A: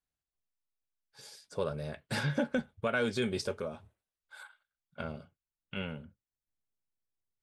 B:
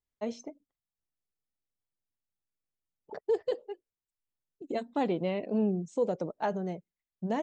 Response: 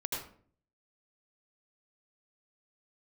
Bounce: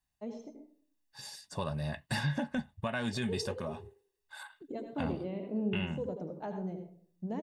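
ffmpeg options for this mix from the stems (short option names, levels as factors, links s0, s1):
-filter_complex "[0:a]aecho=1:1:1.1:0.74,volume=1.41[s0];[1:a]lowshelf=f=490:g=11.5,volume=0.126,asplit=2[s1][s2];[s2]volume=0.708[s3];[2:a]atrim=start_sample=2205[s4];[s3][s4]afir=irnorm=-1:irlink=0[s5];[s0][s1][s5]amix=inputs=3:normalize=0,alimiter=limit=0.075:level=0:latency=1:release=431"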